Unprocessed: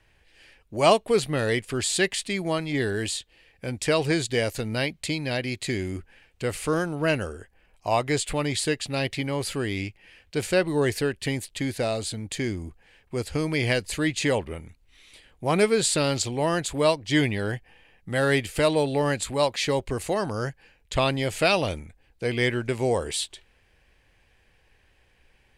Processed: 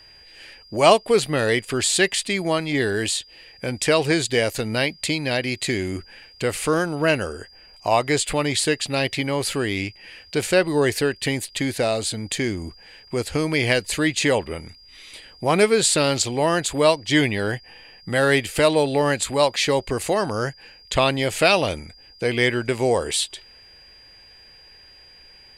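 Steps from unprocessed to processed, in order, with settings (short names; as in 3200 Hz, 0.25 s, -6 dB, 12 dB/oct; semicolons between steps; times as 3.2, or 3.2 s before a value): low shelf 190 Hz -6.5 dB; in parallel at -1 dB: compressor, threshold -38 dBFS, peak gain reduction 22 dB; on the sum: whine 4800 Hz -51 dBFS; gain +4 dB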